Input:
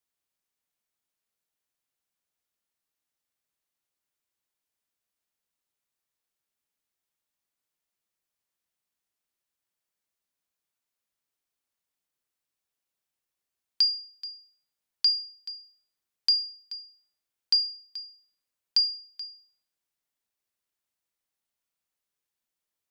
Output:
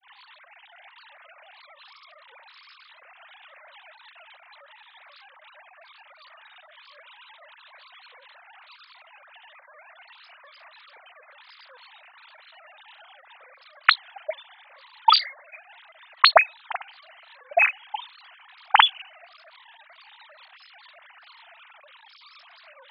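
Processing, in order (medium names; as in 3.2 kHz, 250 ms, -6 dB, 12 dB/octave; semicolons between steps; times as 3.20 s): formants replaced by sine waves; granulator 225 ms, grains 9.3 per s, pitch spread up and down by 7 st; trim +8 dB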